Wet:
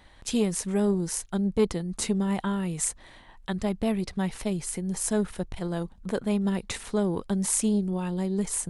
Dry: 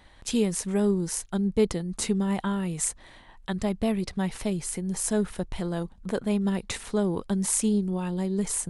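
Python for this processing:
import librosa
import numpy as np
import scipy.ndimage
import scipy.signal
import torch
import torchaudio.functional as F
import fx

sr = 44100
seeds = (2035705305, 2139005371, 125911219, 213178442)

y = fx.transformer_sat(x, sr, knee_hz=270.0)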